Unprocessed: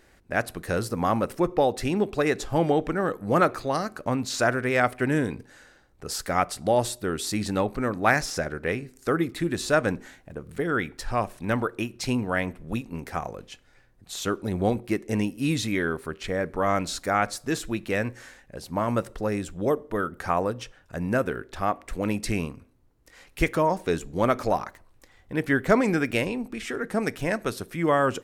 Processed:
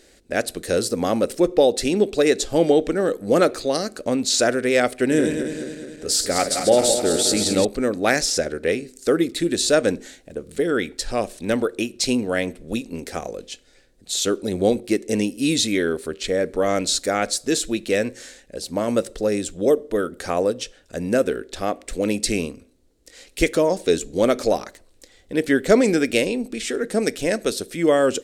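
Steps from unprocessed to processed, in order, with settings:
0:05.01–0:07.65: feedback delay that plays each chunk backwards 106 ms, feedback 74%, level −6.5 dB
octave-band graphic EQ 125/250/500/1,000/4,000/8,000 Hz −8/+4/+8/−9/+8/+10 dB
level +1.5 dB

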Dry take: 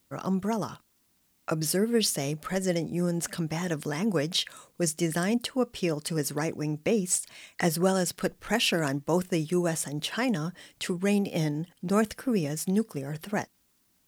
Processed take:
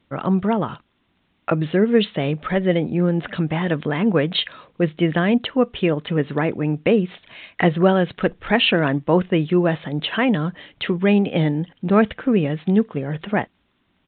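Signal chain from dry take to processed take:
downsampling to 8,000 Hz
level +9 dB

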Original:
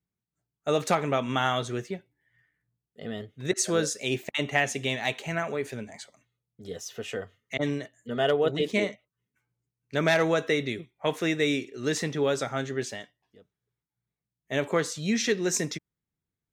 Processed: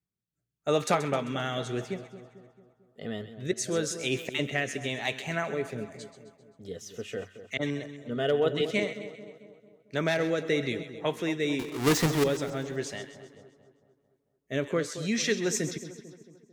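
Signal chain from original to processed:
0:11.59–0:12.24: each half-wave held at its own peak
rotating-speaker cabinet horn 0.9 Hz
echo with a time of its own for lows and highs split 1,200 Hz, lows 223 ms, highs 131 ms, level −12 dB

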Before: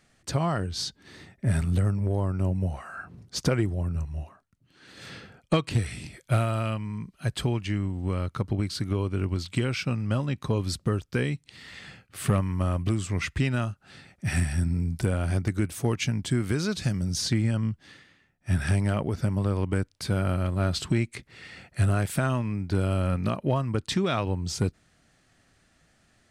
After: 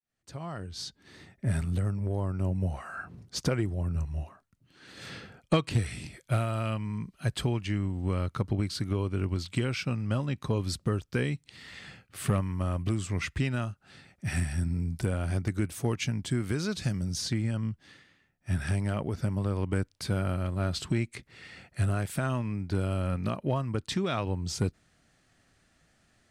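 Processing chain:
fade in at the beginning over 1.86 s
speech leveller within 3 dB 0.5 s
level −3 dB

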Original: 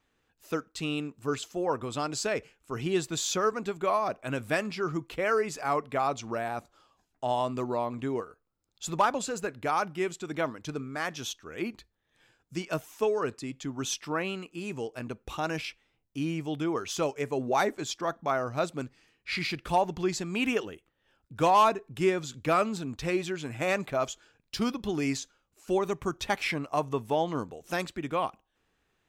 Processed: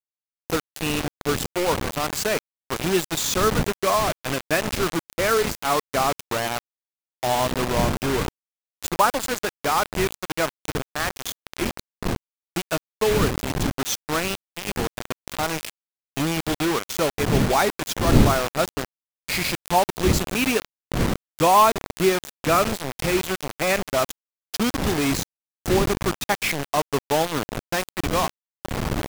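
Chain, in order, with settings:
wind on the microphone 220 Hz −36 dBFS
bit reduction 5 bits
level +5.5 dB

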